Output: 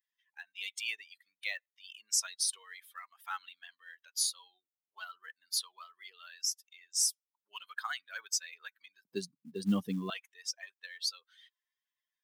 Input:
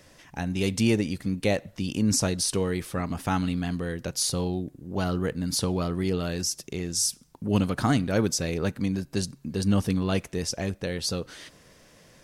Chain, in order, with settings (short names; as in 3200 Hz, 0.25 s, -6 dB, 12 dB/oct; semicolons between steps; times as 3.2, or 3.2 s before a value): per-bin expansion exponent 2; HPF 1300 Hz 24 dB/oct, from 9.05 s 200 Hz, from 10.1 s 1100 Hz; short-mantissa float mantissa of 4-bit